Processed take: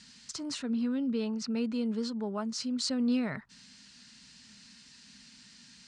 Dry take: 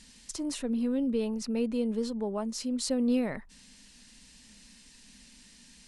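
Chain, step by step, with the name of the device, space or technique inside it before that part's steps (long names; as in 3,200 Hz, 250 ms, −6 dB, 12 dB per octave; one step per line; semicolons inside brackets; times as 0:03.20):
car door speaker (loudspeaker in its box 98–7,500 Hz, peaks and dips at 130 Hz +7 dB, 330 Hz −7 dB, 520 Hz −8 dB, 760 Hz −3 dB, 1,400 Hz +7 dB, 4,500 Hz +5 dB)
0:00.67–0:01.47: low-pass filter 8,600 Hz 12 dB per octave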